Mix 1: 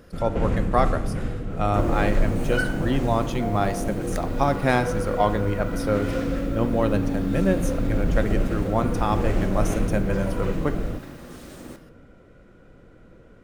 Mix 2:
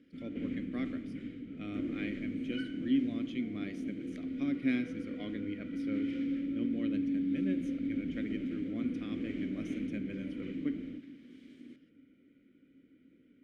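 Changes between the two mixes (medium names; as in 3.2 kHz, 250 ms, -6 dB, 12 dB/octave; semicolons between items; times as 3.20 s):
second sound: send off; master: add vowel filter i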